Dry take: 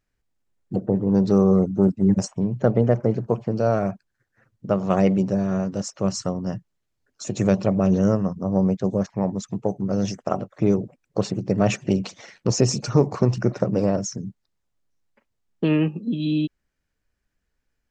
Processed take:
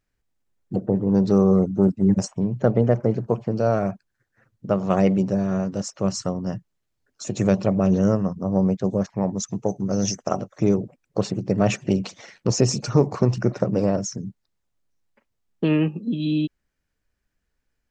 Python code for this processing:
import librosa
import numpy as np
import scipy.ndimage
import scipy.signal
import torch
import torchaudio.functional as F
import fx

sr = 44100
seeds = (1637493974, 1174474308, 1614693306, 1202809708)

y = fx.peak_eq(x, sr, hz=6100.0, db=12.5, octaves=0.46, at=(9.37, 10.69))